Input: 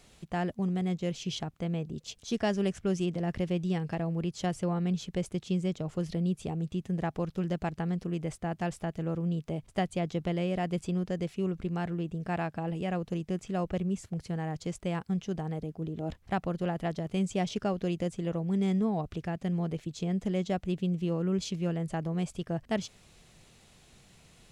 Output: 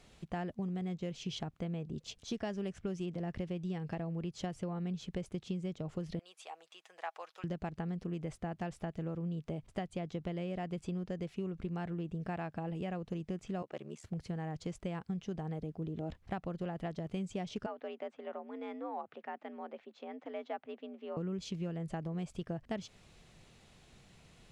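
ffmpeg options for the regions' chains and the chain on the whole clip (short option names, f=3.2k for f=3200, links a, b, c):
-filter_complex "[0:a]asettb=1/sr,asplit=3[a][b][c];[a]atrim=end=6.194[d];[b]atrim=start=6.19:end=7.44,asetpts=PTS-STARTPTS,afade=t=in:d=0.004:c=qsin,afade=t=out:st=1.246:d=0.004:c=qsin,highpass=f=750:w=0.5412,highpass=f=750:w=1.3066,aecho=1:1:6.3:0.32,atrim=end_sample=55125[e];[c]atrim=start=7.436[f];[d][e]acrossfade=d=0.004:c1=hsin:c2=qsin[g];[g][f]acrossfade=d=0.004:c1=qsin:c2=hsin,asettb=1/sr,asplit=3[h][i][j];[h]atrim=end=13.624[k];[i]atrim=start=13.62:end=14.04,asetpts=PTS-STARTPTS,afade=t=in:d=0.004:c=qsin,afade=t=out:st=0.416:d=0.004:c=qsin,highpass=420,aeval=exprs='val(0)*sin(2*PI*36*n/s)':c=same[l];[j]atrim=start=14.036[m];[k][l]acrossfade=d=0.004:c1=hsin:c2=qsin[n];[n][m]acrossfade=d=0.004:c1=qsin:c2=hsin,asettb=1/sr,asplit=3[o][p][q];[o]atrim=end=17.664[r];[p]atrim=start=17.66:end=21.17,asetpts=PTS-STARTPTS,afade=t=in:d=0.004:c=qsin,afade=t=out:st=3.506:d=0.004:c=qsin,afreqshift=67,highpass=690,lowpass=2k[s];[q]atrim=start=21.166[t];[r][s]acrossfade=d=0.004:c1=hsin:c2=qsin[u];[u][t]acrossfade=d=0.004:c1=qsin:c2=hsin,highshelf=f=6.9k:g=-10,acompressor=threshold=-33dB:ratio=6,volume=-1.5dB"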